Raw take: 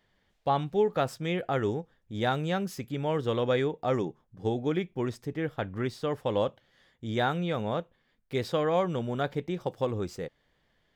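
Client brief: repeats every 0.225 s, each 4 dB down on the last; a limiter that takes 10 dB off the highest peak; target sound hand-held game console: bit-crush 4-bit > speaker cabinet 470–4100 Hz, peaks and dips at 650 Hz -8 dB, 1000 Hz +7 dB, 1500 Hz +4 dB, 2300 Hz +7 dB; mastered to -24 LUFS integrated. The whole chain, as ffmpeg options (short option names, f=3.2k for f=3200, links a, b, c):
-af "alimiter=limit=-24dB:level=0:latency=1,aecho=1:1:225|450|675|900|1125|1350|1575|1800|2025:0.631|0.398|0.25|0.158|0.0994|0.0626|0.0394|0.0249|0.0157,acrusher=bits=3:mix=0:aa=0.000001,highpass=470,equalizer=f=650:t=q:w=4:g=-8,equalizer=f=1k:t=q:w=4:g=7,equalizer=f=1.5k:t=q:w=4:g=4,equalizer=f=2.3k:t=q:w=4:g=7,lowpass=f=4.1k:w=0.5412,lowpass=f=4.1k:w=1.3066,volume=12.5dB"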